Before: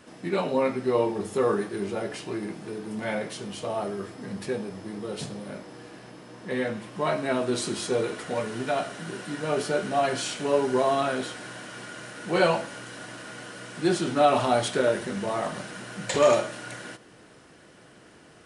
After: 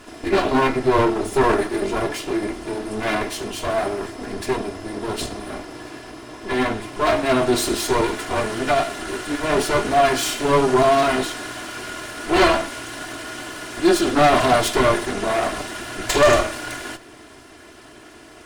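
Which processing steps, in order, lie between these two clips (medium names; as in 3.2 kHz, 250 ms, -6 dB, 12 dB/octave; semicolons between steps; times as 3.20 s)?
comb filter that takes the minimum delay 2.9 ms; sine folder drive 6 dB, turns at -8.5 dBFS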